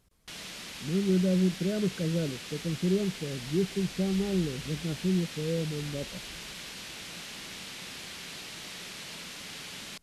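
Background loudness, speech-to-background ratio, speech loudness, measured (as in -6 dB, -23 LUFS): -40.0 LUFS, 9.5 dB, -30.5 LUFS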